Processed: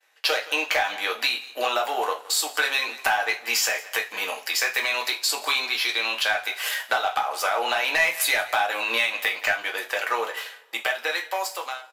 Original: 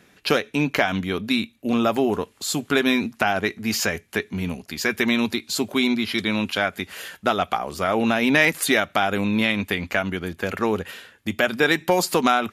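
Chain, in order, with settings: ending faded out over 2.59 s; on a send: echo 0.178 s -22.5 dB; on the sum: varispeed +5%; sample leveller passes 1; expander -49 dBFS; HPF 610 Hz 24 dB/oct; in parallel at -4 dB: wavefolder -10 dBFS; on the sum: compressor 4:1, threshold -24 dBFS, peak gain reduction 13 dB; two-slope reverb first 0.27 s, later 1.9 s, from -27 dB, DRR 0.5 dB

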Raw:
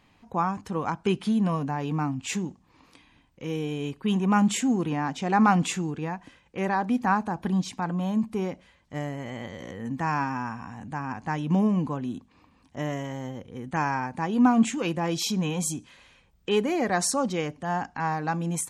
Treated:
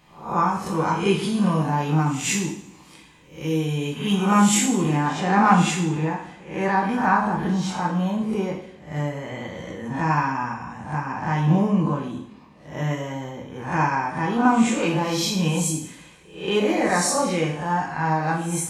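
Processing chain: spectral swells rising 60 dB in 0.47 s; high shelf 6400 Hz +8 dB, from 4.97 s -4 dB; two-slope reverb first 0.62 s, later 2.6 s, from -26 dB, DRR -2 dB

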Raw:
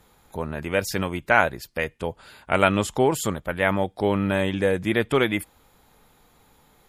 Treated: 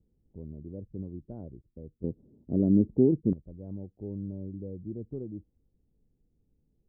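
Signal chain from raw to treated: inverse Chebyshev low-pass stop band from 2100 Hz, stop band 80 dB; bell 260 Hz -2.5 dB 2.3 oct, from 2.04 s +12.5 dB, from 3.33 s -5.5 dB; gain -7.5 dB

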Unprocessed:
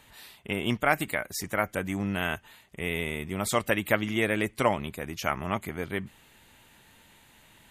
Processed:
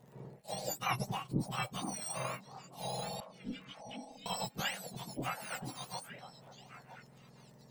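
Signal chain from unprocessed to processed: spectrum mirrored in octaves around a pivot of 1300 Hz; 3.2–4.26 vowel filter i; crackle 64/s -48 dBFS; AM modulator 240 Hz, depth 30%; delay with a stepping band-pass 0.482 s, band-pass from 260 Hz, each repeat 1.4 oct, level -6 dB; gain -5 dB

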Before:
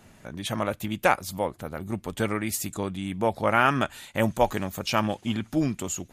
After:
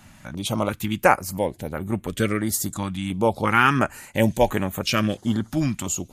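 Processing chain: notch 680 Hz, Q 16; stepped notch 2.9 Hz 430–5000 Hz; gain +5.5 dB

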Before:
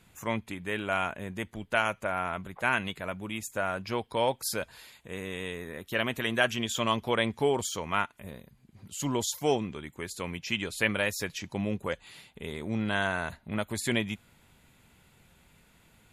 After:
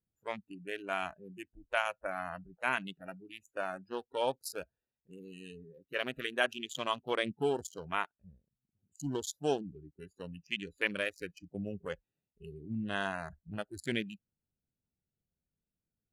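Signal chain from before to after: Wiener smoothing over 41 samples; spectral noise reduction 24 dB; gain -4 dB

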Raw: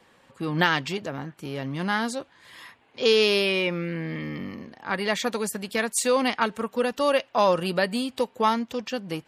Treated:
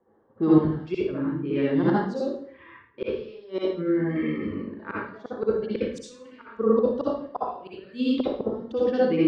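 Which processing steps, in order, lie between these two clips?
notches 60/120/180/240/300/360/420/480/540/600 Hz; gate -52 dBFS, range -12 dB; low-pass opened by the level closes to 1300 Hz, open at -20.5 dBFS; reverb removal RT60 1.2 s; bell 370 Hz +11 dB 0.78 oct; flipped gate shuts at -15 dBFS, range -33 dB; LFO notch square 0.61 Hz 750–2500 Hz; air absorption 230 m; reverb RT60 0.55 s, pre-delay 56 ms, DRR -7 dB

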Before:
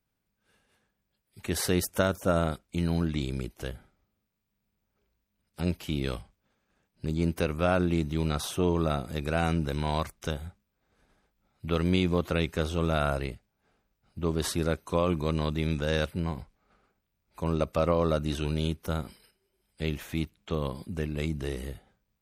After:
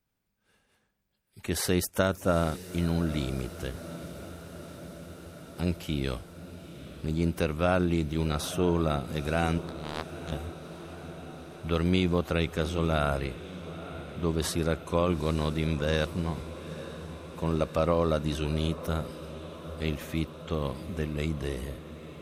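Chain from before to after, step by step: 9.58–10.32 power-law curve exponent 3; diffused feedback echo 0.894 s, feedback 74%, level -14.5 dB

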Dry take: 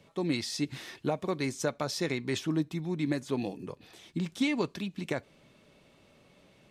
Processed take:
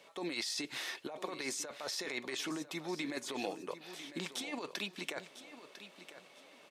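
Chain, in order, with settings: HPF 530 Hz 12 dB/oct; negative-ratio compressor -40 dBFS, ratio -1; on a send: feedback echo 1 s, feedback 27%, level -13 dB; on the sum: gain +1 dB

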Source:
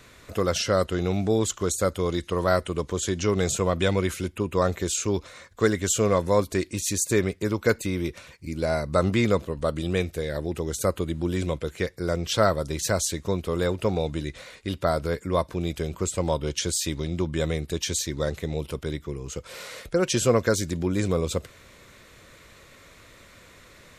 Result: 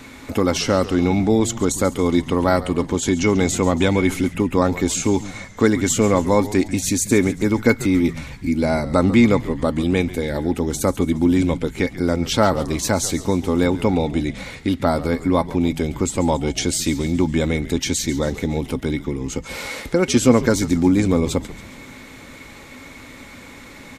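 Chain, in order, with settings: in parallel at +0.5 dB: compressor, threshold -35 dBFS, peak gain reduction 18.5 dB; on the sum: small resonant body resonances 260/840/2200 Hz, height 15 dB, ringing for 70 ms; frequency-shifting echo 0.139 s, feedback 54%, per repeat -100 Hz, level -15.5 dB; gain +1.5 dB

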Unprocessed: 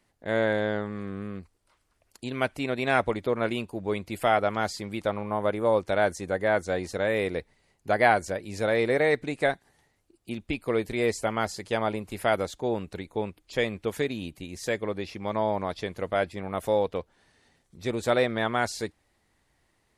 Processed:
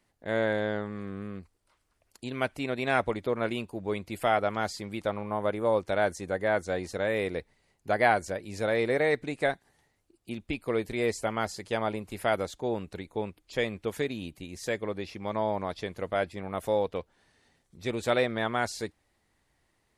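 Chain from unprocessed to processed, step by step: 16.9–18.21 dynamic EQ 2700 Hz, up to +5 dB, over -48 dBFS, Q 1.7; gain -2.5 dB

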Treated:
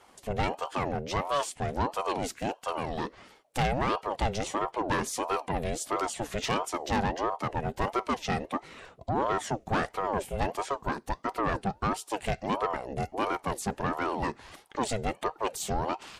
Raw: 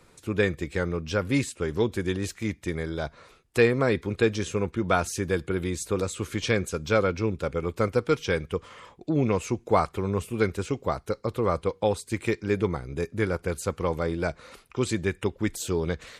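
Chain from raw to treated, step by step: soft clip -21.5 dBFS, distortion -11 dB; ring modulator with a swept carrier 580 Hz, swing 50%, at 1.5 Hz; gain +2 dB

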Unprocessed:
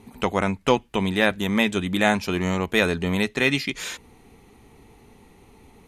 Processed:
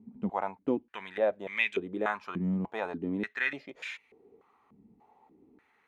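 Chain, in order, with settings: stepped band-pass 3.4 Hz 210–2300 Hz

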